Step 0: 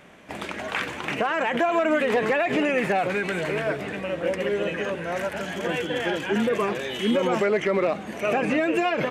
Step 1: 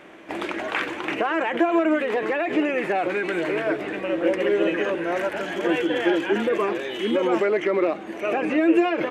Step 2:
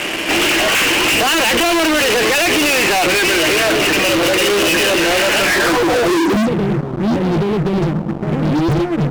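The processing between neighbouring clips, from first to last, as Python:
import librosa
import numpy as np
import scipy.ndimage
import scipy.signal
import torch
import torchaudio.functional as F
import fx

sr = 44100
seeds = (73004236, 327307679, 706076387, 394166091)

y1 = fx.bass_treble(x, sr, bass_db=-10, treble_db=-7)
y1 = fx.rider(y1, sr, range_db=10, speed_s=2.0)
y1 = fx.peak_eq(y1, sr, hz=330.0, db=13.0, octaves=0.3)
y2 = (np.mod(10.0 ** (11.5 / 20.0) * y1 + 1.0, 2.0) - 1.0) / 10.0 ** (11.5 / 20.0)
y2 = fx.filter_sweep_lowpass(y2, sr, from_hz=2900.0, to_hz=150.0, start_s=5.39, end_s=6.53, q=6.9)
y2 = fx.fuzz(y2, sr, gain_db=39.0, gate_db=-46.0)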